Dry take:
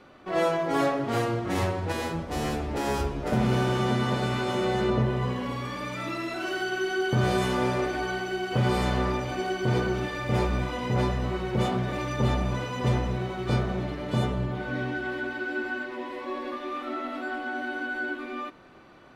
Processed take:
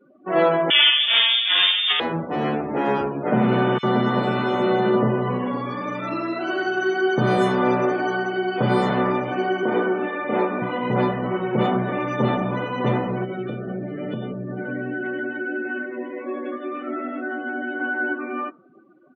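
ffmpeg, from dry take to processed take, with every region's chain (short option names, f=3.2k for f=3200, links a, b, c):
-filter_complex "[0:a]asettb=1/sr,asplit=3[a][b][c];[a]atrim=end=0.704[d];[b]atrim=start=0.7:end=2,asetpts=PTS-STARTPTS,afade=t=in:d=0.004:c=qsin,afade=t=out:st=1.296:d=0.004:c=qsin,acontrast=49,lowpass=f=3.1k:t=q:w=0.5098,lowpass=f=3.1k:t=q:w=0.6013,lowpass=f=3.1k:t=q:w=0.9,lowpass=f=3.1k:t=q:w=2.563,afreqshift=-3700[e];[c]atrim=start=1.996[f];[d][e]acrossfade=d=0.004:c1=hsin:c2=qsin[g];[g][f]acrossfade=d=0.004:c1=qsin:c2=hsin,asettb=1/sr,asplit=3[h][i][j];[h]atrim=end=3.784[k];[i]atrim=start=3.78:end=8.9,asetpts=PTS-STARTPTS,afade=t=in:d=0.004:c=qsin,afade=t=out:st=5.116:d=0.004:c=qsin,highshelf=f=5.8k:g=6.5,acrossover=split=2300[l][m];[l]adelay=50[n];[n][m]amix=inputs=2:normalize=0,atrim=end_sample=225792[o];[j]atrim=start=8.896[p];[k][o]acrossfade=d=0.004:c1=hsin:c2=qsin[q];[q][p]acrossfade=d=0.004:c1=qsin:c2=hsin,asettb=1/sr,asplit=3[r][s][t];[r]atrim=end=9.634[u];[s]atrim=start=9.63:end=10.62,asetpts=PTS-STARTPTS,afade=t=in:d=0.004:c=qsin,afade=t=out:st=0.986:d=0.004:c=qsin,highpass=f=220:w=0.5412,highpass=f=220:w=1.3066,highshelf=f=5.6k:g=-10[v];[t]atrim=start=10.616[w];[u][v]acrossfade=d=0.004:c1=hsin:c2=qsin[x];[x][w]acrossfade=d=0.004:c1=qsin:c2=hsin,asettb=1/sr,asplit=3[y][z][aa];[y]atrim=end=13.244[ab];[z]atrim=start=13.24:end=17.8,asetpts=PTS-STARTPTS,afade=t=in:d=0.004:c=qsin,afade=t=out:st=4.556:d=0.004:c=qsin,equalizer=f=950:t=o:w=0.72:g=-11.5,acompressor=threshold=-29dB:ratio=6:attack=3.2:release=140:knee=1:detection=peak[ac];[aa]atrim=start=17.796[ad];[ab][ac]acrossfade=d=0.004:c1=hsin:c2=qsin[ae];[ae][ad]acrossfade=d=0.004:c1=qsin:c2=hsin,firequalizer=gain_entry='entry(1400,0);entry(2400,-2);entry(4900,-9)':delay=0.05:min_phase=1,afftdn=nr=31:nf=-43,highpass=f=150:w=0.5412,highpass=f=150:w=1.3066,volume=7dB"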